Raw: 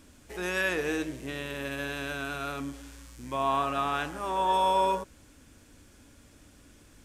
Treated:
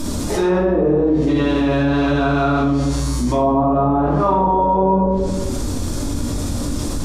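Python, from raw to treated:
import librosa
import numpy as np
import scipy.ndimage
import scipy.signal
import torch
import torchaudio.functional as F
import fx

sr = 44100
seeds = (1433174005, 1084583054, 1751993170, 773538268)

y = fx.env_lowpass_down(x, sr, base_hz=590.0, full_db=-25.5)
y = fx.band_shelf(y, sr, hz=2100.0, db=-10.5, octaves=1.3)
y = fx.room_shoebox(y, sr, seeds[0], volume_m3=310.0, walls='mixed', distance_m=2.7)
y = fx.env_flatten(y, sr, amount_pct=70)
y = y * librosa.db_to_amplitude(6.0)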